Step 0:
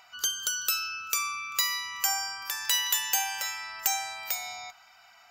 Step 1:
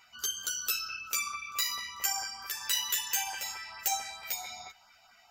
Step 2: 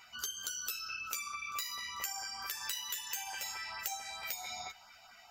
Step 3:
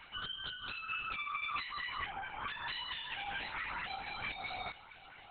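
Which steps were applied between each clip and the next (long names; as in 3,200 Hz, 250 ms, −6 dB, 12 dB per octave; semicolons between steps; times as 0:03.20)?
low-shelf EQ 400 Hz +6 dB; auto-filter notch saw up 4.5 Hz 610–2,900 Hz; string-ensemble chorus
downward compressor 6 to 1, threshold −40 dBFS, peak gain reduction 14 dB; level +3 dB
linear-prediction vocoder at 8 kHz whisper; level +3.5 dB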